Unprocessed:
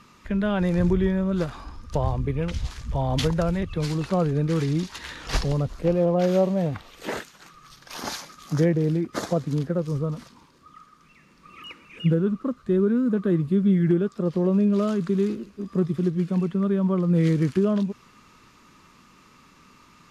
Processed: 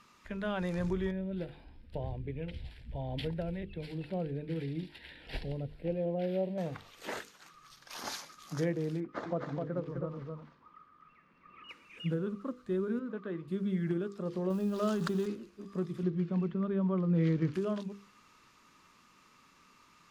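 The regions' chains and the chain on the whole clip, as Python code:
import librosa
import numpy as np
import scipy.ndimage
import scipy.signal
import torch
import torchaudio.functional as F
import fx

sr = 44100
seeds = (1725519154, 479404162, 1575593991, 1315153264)

y = fx.chain(x, sr, fx.high_shelf(hz=3900.0, db=-11.0),
    fx.fixed_phaser(hz=2800.0, stages=4), at=(1.11, 6.58))
y = fx.chain(y, sr, fx.lowpass(hz=2000.0, slope=12),
    fx.echo_single(ms=257, db=-4.0), at=(9.0, 11.69))
y = fx.chain(y, sr, fx.lowpass(hz=3200.0, slope=12),
    fx.low_shelf(hz=300.0, db=-10.0), at=(12.99, 13.48))
y = fx.chain(y, sr, fx.law_mismatch(coded='mu'),
    fx.peak_eq(hz=2200.0, db=-11.0, octaves=0.23),
    fx.env_flatten(amount_pct=70), at=(14.5, 15.26))
y = fx.chain(y, sr, fx.gaussian_blur(sigma=1.8),
    fx.low_shelf(hz=320.0, db=6.0), at=(16.03, 17.54))
y = fx.low_shelf(y, sr, hz=350.0, db=-6.5)
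y = fx.hum_notches(y, sr, base_hz=50, count=10)
y = y * librosa.db_to_amplitude(-7.0)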